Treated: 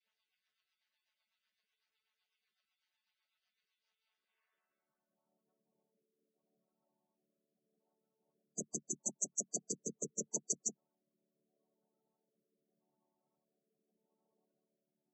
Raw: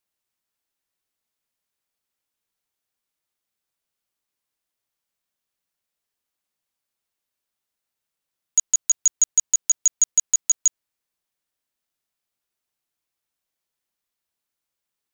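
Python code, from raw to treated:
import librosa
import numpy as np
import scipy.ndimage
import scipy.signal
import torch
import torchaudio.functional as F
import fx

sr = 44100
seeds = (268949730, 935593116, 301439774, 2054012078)

y = fx.chord_vocoder(x, sr, chord='major triad', root=50)
y = fx.filter_sweep_bandpass(y, sr, from_hz=3400.0, to_hz=470.0, start_s=4.05, end_s=5.43, q=0.84)
y = fx.rotary_switch(y, sr, hz=8.0, then_hz=0.8, switch_at_s=3.57)
y = fx.spec_gate(y, sr, threshold_db=-10, keep='strong')
y = y * 10.0 ** (6.0 / 20.0)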